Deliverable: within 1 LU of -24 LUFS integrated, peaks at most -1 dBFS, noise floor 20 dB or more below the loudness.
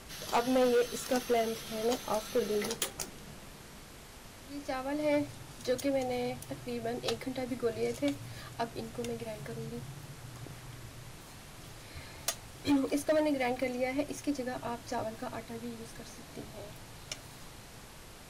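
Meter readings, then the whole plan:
clipped samples 0.8%; clipping level -23.0 dBFS; noise floor -51 dBFS; noise floor target -54 dBFS; loudness -34.0 LUFS; peak level -23.0 dBFS; loudness target -24.0 LUFS
-> clip repair -23 dBFS; noise print and reduce 6 dB; trim +10 dB

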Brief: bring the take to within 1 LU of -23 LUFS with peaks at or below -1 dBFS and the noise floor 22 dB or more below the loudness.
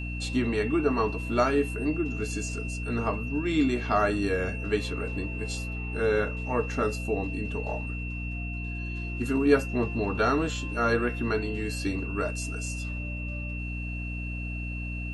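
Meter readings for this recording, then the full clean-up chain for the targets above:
hum 60 Hz; highest harmonic 300 Hz; hum level -32 dBFS; steady tone 2.7 kHz; tone level -38 dBFS; loudness -29.0 LUFS; peak level -8.0 dBFS; loudness target -23.0 LUFS
-> hum notches 60/120/180/240/300 Hz; band-stop 2.7 kHz, Q 30; trim +6 dB

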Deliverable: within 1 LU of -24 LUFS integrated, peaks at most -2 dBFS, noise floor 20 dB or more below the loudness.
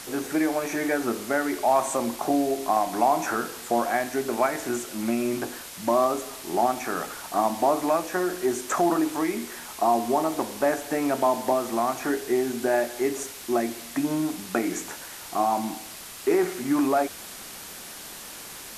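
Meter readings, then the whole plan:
noise floor -41 dBFS; noise floor target -46 dBFS; loudness -26.0 LUFS; peak level -10.0 dBFS; loudness target -24.0 LUFS
-> noise print and reduce 6 dB; trim +2 dB

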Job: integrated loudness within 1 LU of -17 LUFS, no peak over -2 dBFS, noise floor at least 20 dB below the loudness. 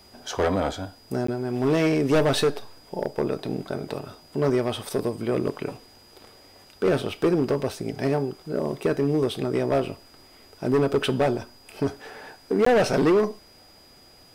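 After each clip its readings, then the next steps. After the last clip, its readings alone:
dropouts 2; longest dropout 14 ms; steady tone 4.9 kHz; tone level -53 dBFS; loudness -25.0 LUFS; peak level -15.0 dBFS; loudness target -17.0 LUFS
-> interpolate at 1.27/12.65 s, 14 ms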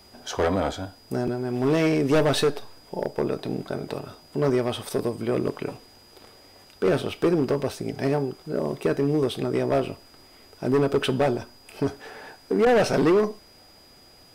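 dropouts 0; steady tone 4.9 kHz; tone level -53 dBFS
-> band-stop 4.9 kHz, Q 30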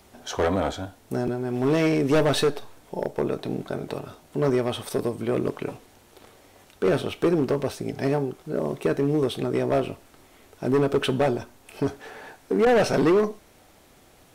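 steady tone not found; loudness -25.0 LUFS; peak level -13.0 dBFS; loudness target -17.0 LUFS
-> trim +8 dB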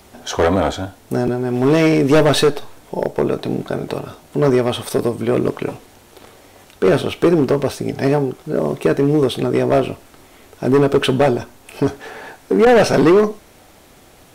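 loudness -17.0 LUFS; peak level -5.0 dBFS; noise floor -47 dBFS

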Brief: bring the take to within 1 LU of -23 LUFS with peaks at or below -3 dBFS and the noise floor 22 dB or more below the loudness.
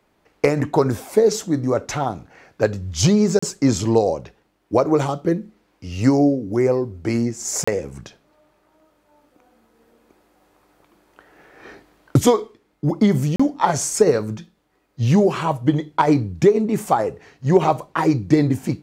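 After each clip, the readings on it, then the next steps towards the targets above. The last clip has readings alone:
dropouts 3; longest dropout 35 ms; loudness -19.5 LUFS; peak level -3.0 dBFS; loudness target -23.0 LUFS
-> interpolate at 3.39/7.64/13.36 s, 35 ms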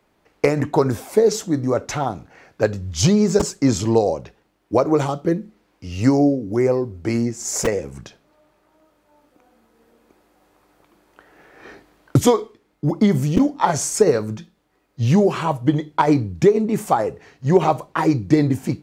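dropouts 0; loudness -19.5 LUFS; peak level -3.0 dBFS; loudness target -23.0 LUFS
-> trim -3.5 dB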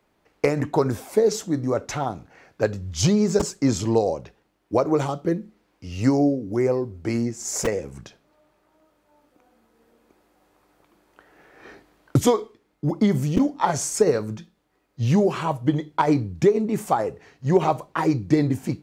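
loudness -23.0 LUFS; peak level -6.5 dBFS; noise floor -68 dBFS

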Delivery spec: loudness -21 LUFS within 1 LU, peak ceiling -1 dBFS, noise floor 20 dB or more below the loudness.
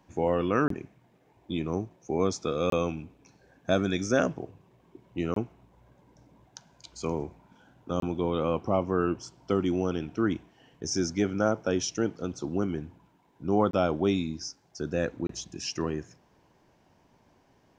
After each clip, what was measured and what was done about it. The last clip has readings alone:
dropouts 6; longest dropout 23 ms; loudness -29.5 LUFS; peak level -10.5 dBFS; loudness target -21.0 LUFS
-> interpolate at 0.68/2.70/5.34/8.00/13.71/15.27 s, 23 ms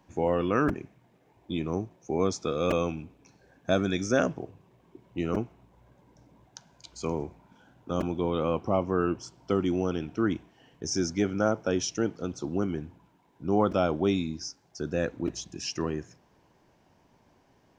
dropouts 0; loudness -29.5 LUFS; peak level -10.5 dBFS; loudness target -21.0 LUFS
-> trim +8.5 dB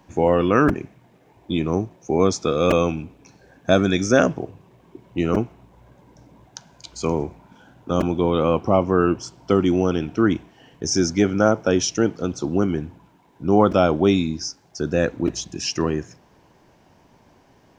loudness -21.0 LUFS; peak level -2.0 dBFS; noise floor -56 dBFS

